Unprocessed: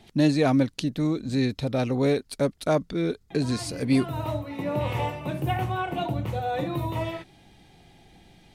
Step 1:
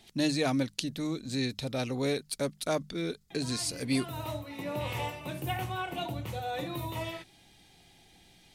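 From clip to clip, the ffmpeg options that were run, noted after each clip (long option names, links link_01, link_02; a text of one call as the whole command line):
ffmpeg -i in.wav -af "highshelf=frequency=2400:gain=12,bandreject=frequency=50:width_type=h:width=6,bandreject=frequency=100:width_type=h:width=6,bandreject=frequency=150:width_type=h:width=6,bandreject=frequency=200:width_type=h:width=6,volume=-8dB" out.wav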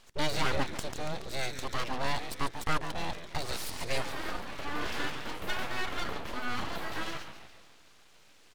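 ffmpeg -i in.wav -filter_complex "[0:a]asplit=7[link_01][link_02][link_03][link_04][link_05][link_06][link_07];[link_02]adelay=141,afreqshift=-120,volume=-9dB[link_08];[link_03]adelay=282,afreqshift=-240,volume=-14.4dB[link_09];[link_04]adelay=423,afreqshift=-360,volume=-19.7dB[link_10];[link_05]adelay=564,afreqshift=-480,volume=-25.1dB[link_11];[link_06]adelay=705,afreqshift=-600,volume=-30.4dB[link_12];[link_07]adelay=846,afreqshift=-720,volume=-35.8dB[link_13];[link_01][link_08][link_09][link_10][link_11][link_12][link_13]amix=inputs=7:normalize=0,asplit=2[link_14][link_15];[link_15]highpass=frequency=720:poles=1,volume=13dB,asoftclip=type=tanh:threshold=-7.5dB[link_16];[link_14][link_16]amix=inputs=2:normalize=0,lowpass=frequency=1600:poles=1,volume=-6dB,aeval=exprs='abs(val(0))':channel_layout=same" out.wav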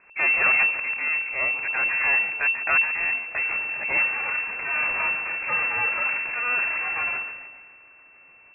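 ffmpeg -i in.wav -af "lowpass=frequency=2300:width_type=q:width=0.5098,lowpass=frequency=2300:width_type=q:width=0.6013,lowpass=frequency=2300:width_type=q:width=0.9,lowpass=frequency=2300:width_type=q:width=2.563,afreqshift=-2700,volume=6.5dB" out.wav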